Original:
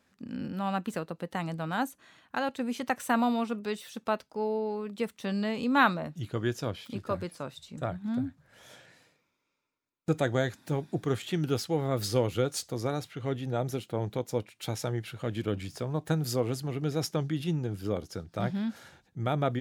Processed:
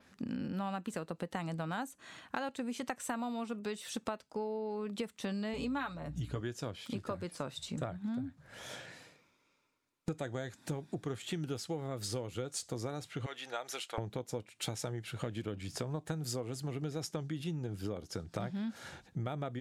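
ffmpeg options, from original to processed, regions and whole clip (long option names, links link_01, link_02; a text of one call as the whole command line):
ffmpeg -i in.wav -filter_complex "[0:a]asettb=1/sr,asplit=3[link_01][link_02][link_03];[link_01]atrim=end=5.534[link_04];[link_02]atrim=start=5.53:end=6.41,asetpts=PTS-STARTPTS,afade=type=in:duration=0.004:curve=qsin,afade=type=out:start_time=0.876:duration=0.004:curve=qsin,aecho=1:1:7:0.62,atrim=end_sample=38808,aeval=exprs='val(0)+0.00708*(sin(2*PI*60*n/s)+sin(2*PI*2*60*n/s)/2+sin(2*PI*3*60*n/s)/3+sin(2*PI*4*60*n/s)/4+sin(2*PI*5*60*n/s)/5)':channel_layout=same[link_05];[link_03]atrim=start=6.406[link_06];[link_04][link_05]acrossfade=duration=0.004:curve1=hsin:curve2=qsin[link_07];[link_07][link_06]acrossfade=duration=0.004:curve1=qsin:curve2=hsin,asettb=1/sr,asplit=3[link_08][link_09][link_10];[link_08]atrim=end=13.264[link_11];[link_09]atrim=start=13.26:end=13.98,asetpts=PTS-STARTPTS,afade=type=in:duration=0.004:curve=qsin,afade=type=out:start_time=0.716:duration=0.004:curve=qsin,highpass=1100,highshelf=frequency=11000:gain=-8[link_12];[link_10]atrim=start=13.976[link_13];[link_11][link_12]acrossfade=duration=0.004:curve1=hsin:curve2=qsin[link_14];[link_14][link_13]acrossfade=duration=0.004:curve1=qsin:curve2=hsin,lowpass=12000,adynamicequalizer=threshold=0.00141:dfrequency=7900:dqfactor=2.1:tfrequency=7900:tqfactor=2.1:attack=5:release=100:ratio=0.375:range=3:mode=boostabove:tftype=bell,acompressor=threshold=-41dB:ratio=12,volume=6.5dB" out.wav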